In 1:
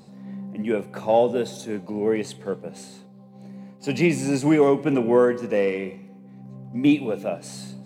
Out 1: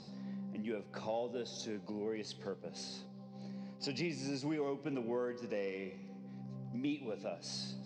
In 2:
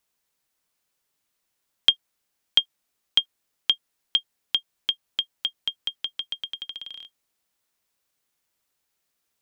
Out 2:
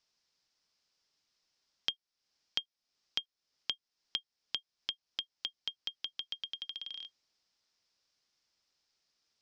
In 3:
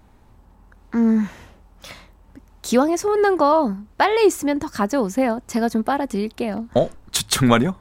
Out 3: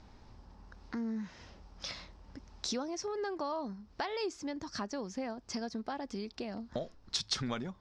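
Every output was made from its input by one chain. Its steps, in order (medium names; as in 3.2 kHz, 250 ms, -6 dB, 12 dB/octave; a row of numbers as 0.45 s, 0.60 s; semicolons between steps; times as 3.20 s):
compression 2.5:1, threshold -39 dBFS; four-pole ladder low-pass 5.7 kHz, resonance 65%; trim +7 dB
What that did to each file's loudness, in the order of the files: -18.5 LU, -13.5 LU, -18.5 LU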